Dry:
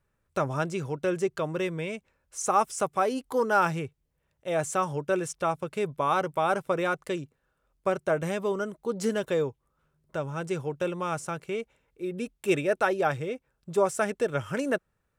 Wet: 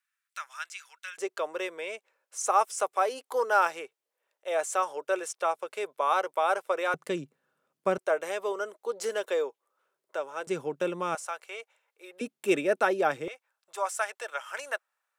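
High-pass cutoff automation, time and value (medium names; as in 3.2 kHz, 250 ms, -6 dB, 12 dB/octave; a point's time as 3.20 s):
high-pass 24 dB/octave
1.5 kHz
from 1.18 s 450 Hz
from 6.94 s 160 Hz
from 7.98 s 420 Hz
from 10.47 s 200 Hz
from 11.15 s 620 Hz
from 12.21 s 210 Hz
from 13.28 s 730 Hz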